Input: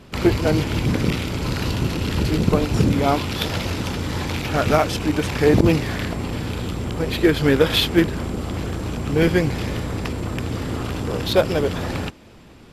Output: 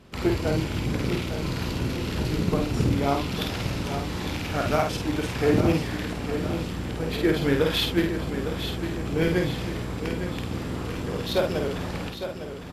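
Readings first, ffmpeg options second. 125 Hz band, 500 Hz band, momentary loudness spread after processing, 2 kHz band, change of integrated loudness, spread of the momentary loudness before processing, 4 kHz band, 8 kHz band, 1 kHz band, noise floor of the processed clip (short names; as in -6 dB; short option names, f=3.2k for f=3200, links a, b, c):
-5.5 dB, -5.5 dB, 9 LU, -5.5 dB, -5.5 dB, 10 LU, -5.5 dB, -5.5 dB, -5.0 dB, -34 dBFS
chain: -filter_complex "[0:a]asplit=2[a][b];[b]adelay=50,volume=-4dB[c];[a][c]amix=inputs=2:normalize=0,aecho=1:1:856|1712|2568|3424|4280|5136:0.355|0.181|0.0923|0.0471|0.024|0.0122,volume=-7.5dB"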